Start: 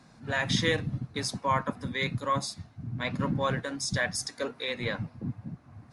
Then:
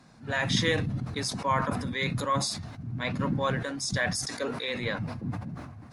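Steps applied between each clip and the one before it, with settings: decay stretcher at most 46 dB/s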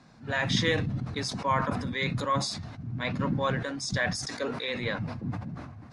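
low-pass 6.7 kHz 12 dB/octave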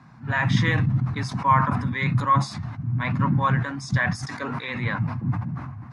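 ten-band graphic EQ 125 Hz +11 dB, 250 Hz +3 dB, 500 Hz -8 dB, 1 kHz +10 dB, 2 kHz +4 dB, 4 kHz -5 dB, 8 kHz -4 dB

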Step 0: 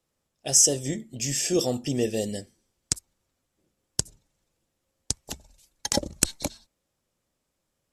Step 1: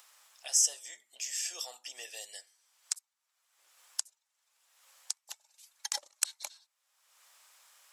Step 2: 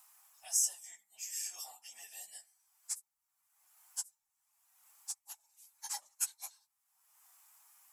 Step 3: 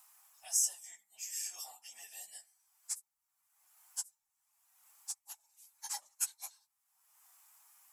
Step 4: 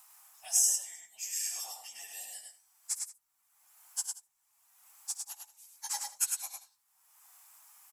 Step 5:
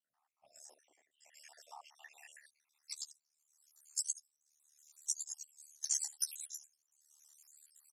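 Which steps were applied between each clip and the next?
high-pass 900 Hz 24 dB/octave; upward compressor, threshold -32 dBFS; trim -7.5 dB
phase randomisation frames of 50 ms; FFT filter 150 Hz 0 dB, 310 Hz -21 dB, 510 Hz -27 dB, 770 Hz -7 dB, 1.6 kHz -14 dB, 2.4 kHz -14 dB, 3.6 kHz -19 dB, 13 kHz -1 dB; trim +5.5 dB
no audible change
multi-tap echo 69/103/181 ms -16/-4/-18.5 dB; trim +4 dB
random holes in the spectrogram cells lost 60%; band-pass sweep 220 Hz -> 6.5 kHz, 0.34–3.43 s; ring modulator 37 Hz; trim +9.5 dB

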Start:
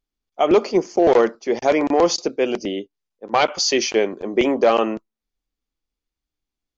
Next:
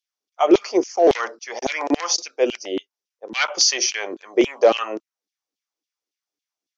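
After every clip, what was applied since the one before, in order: peaking EQ 5.7 kHz +9.5 dB 0.41 oct; LFO high-pass saw down 3.6 Hz 260–3500 Hz; trim -3 dB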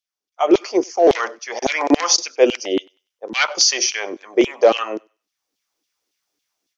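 level rider gain up to 13.5 dB; thinning echo 97 ms, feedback 28%, high-pass 930 Hz, level -23.5 dB; trim -1 dB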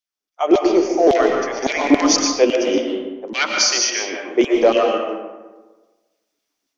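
peaking EQ 260 Hz +5 dB 0.54 oct; on a send at -1 dB: reverberation RT60 1.3 s, pre-delay 80 ms; on the sum: trim -2 dB

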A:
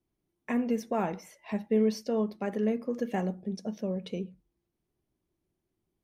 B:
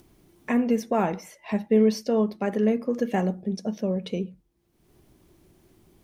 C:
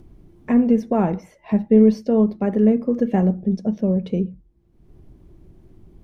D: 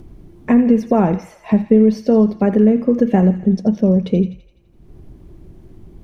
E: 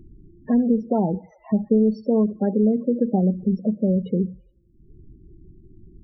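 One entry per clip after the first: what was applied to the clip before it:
upward compressor, threshold -48 dBFS; trim +6 dB
tilt EQ -3.5 dB/octave
compression 3:1, threshold -16 dBFS, peak gain reduction 6 dB; feedback echo behind a high-pass 84 ms, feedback 58%, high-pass 1.5 kHz, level -10.5 dB; trim +7 dB
loudest bins only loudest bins 16; trim -6.5 dB

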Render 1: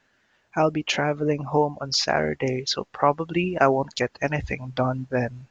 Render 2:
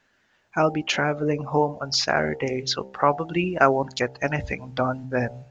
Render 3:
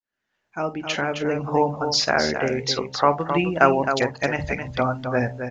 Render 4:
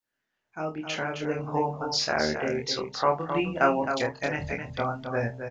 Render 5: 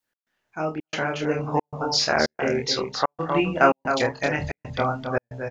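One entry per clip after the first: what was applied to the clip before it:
de-hum 65.38 Hz, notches 14; dynamic bell 1.4 kHz, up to +5 dB, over -43 dBFS, Q 3.8
fade-in on the opening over 1.48 s; hum notches 50/100/150 Hz; multi-tap echo 48/49/264 ms -19.5/-16.5/-7.5 dB; trim +1.5 dB
reverse; upward compressor, threshold -39 dBFS; reverse; doubling 26 ms -3 dB; trim -7.5 dB
trance gate "x.xxxx.xxxx" 113 bpm -60 dB; trim +5 dB

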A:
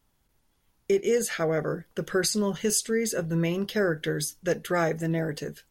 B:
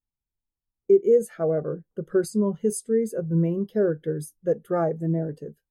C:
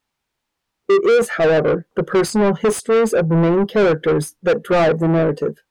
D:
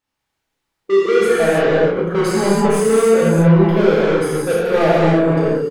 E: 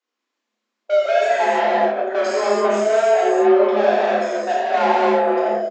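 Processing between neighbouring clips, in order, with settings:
high-order bell 3.3 kHz -8.5 dB 2.4 oct; spectral contrast expander 1.5:1; trim +6.5 dB
overdrive pedal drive 30 dB, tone 6.4 kHz, clips at -8.5 dBFS; treble shelf 5.1 kHz -10.5 dB; trim +1.5 dB
doubling 31 ms -7 dB; gated-style reverb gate 340 ms flat, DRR -7.5 dB; trim -7 dB
wow and flutter 26 cents; resampled via 16 kHz; frequency shift +210 Hz; trim -3 dB

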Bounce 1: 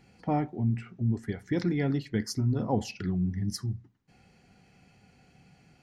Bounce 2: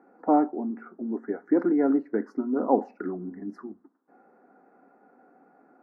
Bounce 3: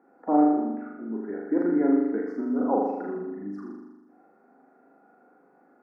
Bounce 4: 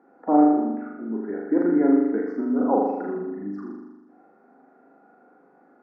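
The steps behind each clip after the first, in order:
elliptic band-pass 270–1400 Hz, stop band 40 dB; trim +8.5 dB
flutter echo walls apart 6.9 m, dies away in 1.1 s; trim -4.5 dB
distance through air 87 m; trim +3.5 dB

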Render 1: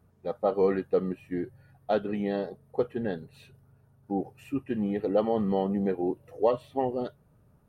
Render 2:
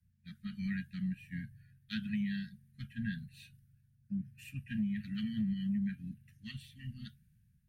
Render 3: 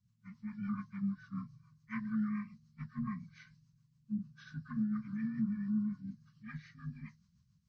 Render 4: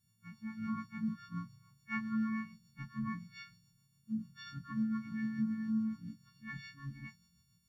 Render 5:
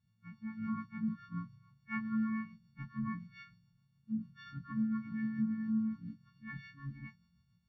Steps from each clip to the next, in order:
Chebyshev band-stop 220–1600 Hz, order 5; compression, threshold -33 dBFS, peak gain reduction 7 dB; three bands expanded up and down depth 40%; trim +1 dB
frequency axis rescaled in octaves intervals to 78%; rotary cabinet horn 7 Hz; spectral replace 5.11–5.91 s, 240–1500 Hz both; trim +2 dB
partials quantised in pitch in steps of 4 st
distance through air 280 m; trim +1 dB

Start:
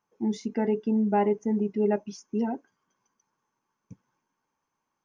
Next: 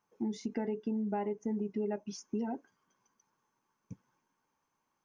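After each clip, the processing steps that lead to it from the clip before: compression 6:1, threshold -32 dBFS, peak gain reduction 12 dB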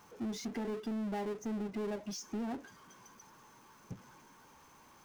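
peaking EQ 65 Hz +9 dB; power-law waveshaper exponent 0.5; trim -7 dB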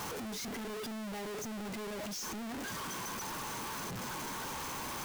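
one-bit comparator; trim +1 dB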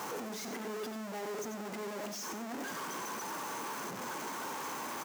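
local Wiener filter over 15 samples; high-pass 260 Hz 12 dB/octave; on a send: delay 91 ms -8.5 dB; on the sum: trim +2.5 dB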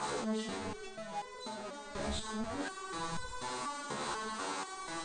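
knee-point frequency compression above 1.6 kHz 1.5:1; wind noise 110 Hz -49 dBFS; resonator arpeggio 4.1 Hz 72–500 Hz; trim +11.5 dB

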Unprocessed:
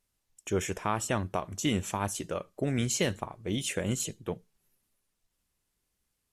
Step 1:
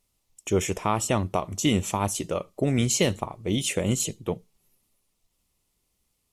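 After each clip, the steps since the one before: peaking EQ 1.6 kHz -11.5 dB 0.32 oct; trim +6 dB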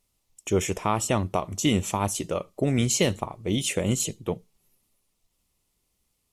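no audible change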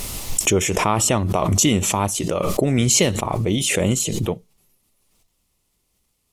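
swell ahead of each attack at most 20 dB/s; trim +4 dB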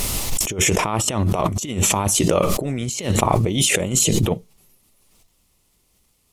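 compressor with a negative ratio -22 dBFS, ratio -0.5; trim +3 dB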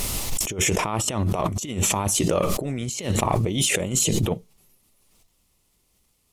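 saturation -4 dBFS, distortion -26 dB; trim -3.5 dB

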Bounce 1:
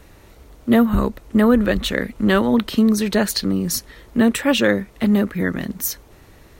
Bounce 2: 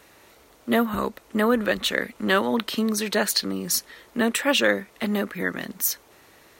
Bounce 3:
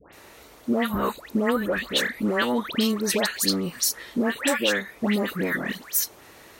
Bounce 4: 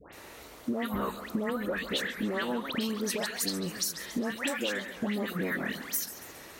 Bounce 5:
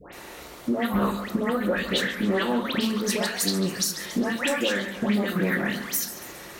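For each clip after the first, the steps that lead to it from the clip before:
high-pass 610 Hz 6 dB/octave
compression, threshold -24 dBFS, peak gain reduction 9 dB; phase dispersion highs, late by 130 ms, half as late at 1.5 kHz; trim +4.5 dB
compression, threshold -29 dBFS, peak gain reduction 11 dB; modulated delay 137 ms, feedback 58%, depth 208 cents, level -12.5 dB
simulated room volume 320 m³, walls furnished, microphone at 0.9 m; loudspeaker Doppler distortion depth 0.15 ms; trim +5.5 dB

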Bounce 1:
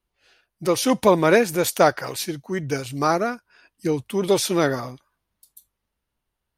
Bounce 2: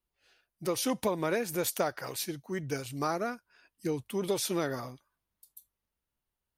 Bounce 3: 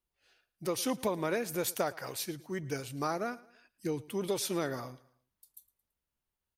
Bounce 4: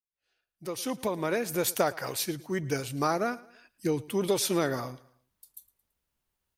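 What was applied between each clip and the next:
treble shelf 12 kHz +9 dB; compression 6:1, threshold -17 dBFS, peak gain reduction 7.5 dB; trim -8.5 dB
feedback delay 111 ms, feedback 42%, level -21 dB; trim -2 dB
fade-in on the opening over 1.85 s; trim +6 dB

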